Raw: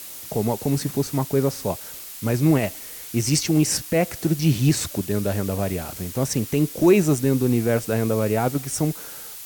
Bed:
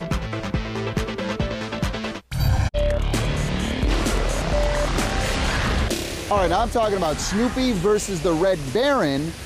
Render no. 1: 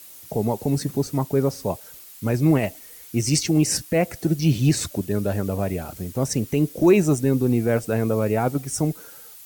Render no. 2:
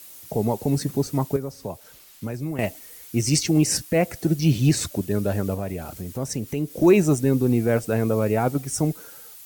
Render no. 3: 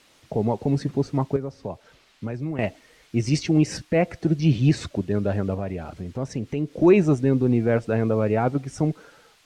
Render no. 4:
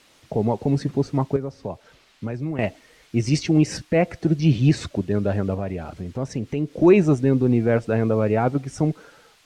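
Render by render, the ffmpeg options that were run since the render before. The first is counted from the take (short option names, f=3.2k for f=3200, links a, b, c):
-af "afftdn=nr=9:nf=-38"
-filter_complex "[0:a]asettb=1/sr,asplit=3[a][b][c];[a]atrim=end=1.364[d];[b]atrim=start=1.36:end=2.59,asetpts=PTS-STARTPTS,afade=t=in:d=0.004:c=qsin,afade=t=out:st=1.226:d=0.004:c=qsin,acrossover=split=84|5800[e][f][g];[e]acompressor=threshold=-48dB:ratio=4[h];[f]acompressor=threshold=-29dB:ratio=4[i];[g]acompressor=threshold=-49dB:ratio=4[j];[h][i][j]amix=inputs=3:normalize=0[k];[c]atrim=start=2.586[l];[d][k]acrossfade=d=0.004:c1=hsin:c2=qsin[m];[m][l]acrossfade=d=0.004:c1=qsin:c2=hsin,asettb=1/sr,asplit=3[n][o][p];[n]atrim=end=5.544[q];[o]atrim=start=5.54:end=6.76,asetpts=PTS-STARTPTS,afade=t=in:d=0.004:c=qsin,afade=t=out:st=1.216:d=0.004:c=qsin,acompressor=threshold=-31dB:ratio=1.5:attack=3.2:release=140:knee=1:detection=peak[r];[p]atrim=start=6.756[s];[q][r]acrossfade=d=0.004:c1=hsin:c2=qsin[t];[t][s]acrossfade=d=0.004:c1=qsin:c2=hsin"
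-af "lowpass=3.5k"
-af "volume=1.5dB"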